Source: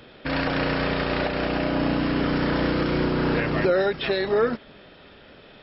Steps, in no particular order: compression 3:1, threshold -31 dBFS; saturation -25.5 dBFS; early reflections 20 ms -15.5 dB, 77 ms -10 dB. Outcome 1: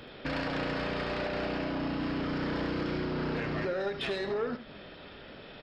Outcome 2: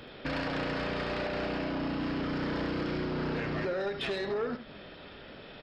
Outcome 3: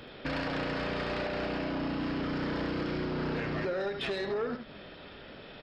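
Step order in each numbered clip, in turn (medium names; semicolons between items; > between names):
compression > saturation > early reflections; compression > early reflections > saturation; early reflections > compression > saturation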